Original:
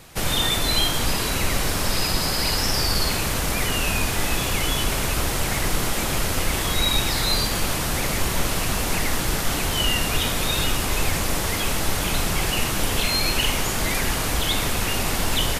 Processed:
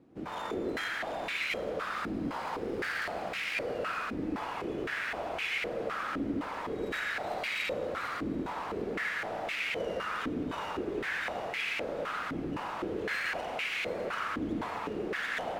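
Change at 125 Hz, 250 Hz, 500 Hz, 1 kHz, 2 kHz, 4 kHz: -20.5, -7.5, -5.5, -8.0, -7.0, -19.0 dB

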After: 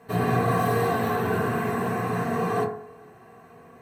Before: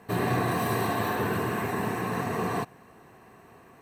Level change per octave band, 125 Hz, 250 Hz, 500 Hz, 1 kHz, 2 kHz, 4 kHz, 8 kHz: +4.0, +3.0, +5.0, +3.5, +1.5, -1.5, -1.5 dB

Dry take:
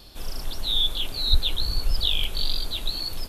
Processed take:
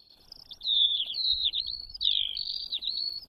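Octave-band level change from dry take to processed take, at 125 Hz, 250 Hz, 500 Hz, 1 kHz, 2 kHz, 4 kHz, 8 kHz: under -25 dB, under -20 dB, under -20 dB, under -20 dB, -13.0 dB, -0.5 dB, under -25 dB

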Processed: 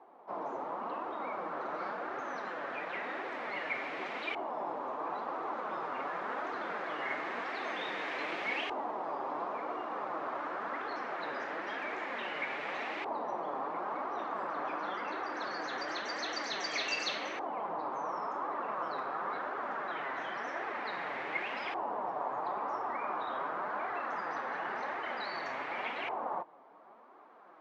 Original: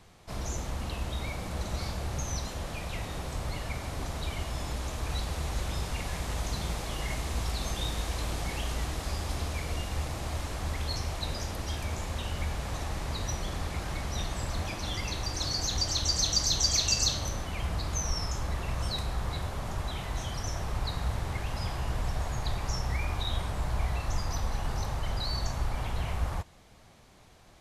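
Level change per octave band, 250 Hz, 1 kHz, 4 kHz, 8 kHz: -5.0, +5.0, -11.0, -21.5 dB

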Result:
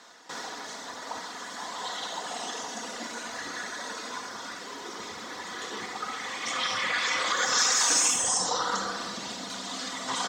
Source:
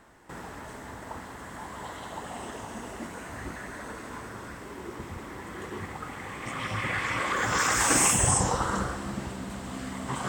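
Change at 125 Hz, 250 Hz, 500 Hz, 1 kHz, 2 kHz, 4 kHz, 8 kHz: -18.0, -7.0, -2.0, -0.5, +0.5, +8.5, +1.5 dB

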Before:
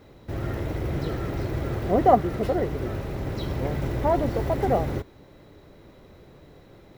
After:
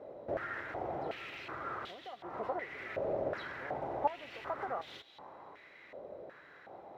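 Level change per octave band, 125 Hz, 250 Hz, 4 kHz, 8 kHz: -26.0 dB, -19.5 dB, -7.0 dB, n/a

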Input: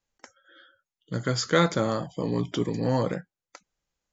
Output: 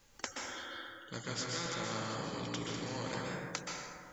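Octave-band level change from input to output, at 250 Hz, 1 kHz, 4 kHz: -14.0, -9.0, -5.5 dB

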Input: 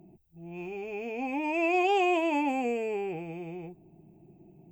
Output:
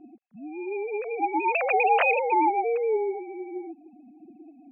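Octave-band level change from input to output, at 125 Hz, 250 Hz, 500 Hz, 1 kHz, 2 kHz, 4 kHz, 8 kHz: under -20 dB, -3.0 dB, +4.5 dB, +7.5 dB, +5.5 dB, -5.0 dB, n/a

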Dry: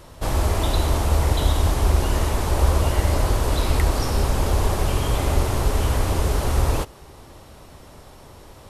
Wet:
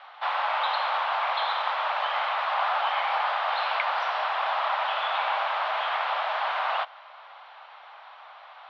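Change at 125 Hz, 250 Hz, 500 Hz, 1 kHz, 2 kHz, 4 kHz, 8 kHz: under -40 dB, under -40 dB, -7.5 dB, +4.5 dB, +5.0 dB, -0.5 dB, under -30 dB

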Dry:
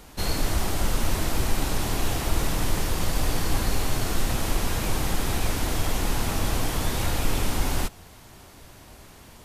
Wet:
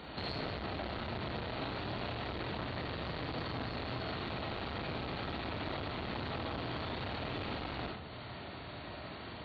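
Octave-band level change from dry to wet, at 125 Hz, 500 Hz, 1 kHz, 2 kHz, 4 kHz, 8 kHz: -12.5 dB, -7.5 dB, -8.5 dB, -8.5 dB, -10.0 dB, under -40 dB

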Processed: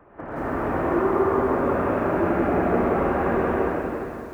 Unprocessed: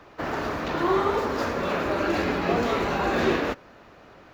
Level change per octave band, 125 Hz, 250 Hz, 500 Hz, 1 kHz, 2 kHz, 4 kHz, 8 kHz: +4.0 dB, +4.0 dB, +3.5 dB, +2.0 dB, -1.5 dB, under -15 dB, under -10 dB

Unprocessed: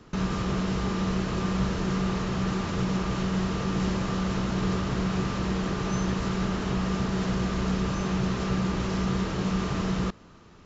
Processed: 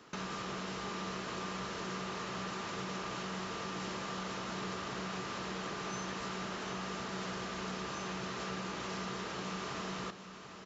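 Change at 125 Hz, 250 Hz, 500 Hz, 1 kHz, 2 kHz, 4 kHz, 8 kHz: -18.0 dB, -16.0 dB, -9.5 dB, -6.0 dB, -5.5 dB, -5.0 dB, n/a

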